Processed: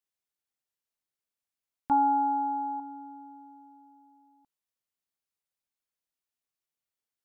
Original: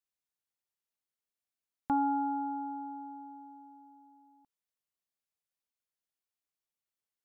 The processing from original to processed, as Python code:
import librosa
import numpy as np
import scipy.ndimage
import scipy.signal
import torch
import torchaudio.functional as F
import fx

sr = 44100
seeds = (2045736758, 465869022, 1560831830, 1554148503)

y = fx.peak_eq(x, sr, hz=900.0, db=14.5, octaves=0.2, at=(1.91, 2.8))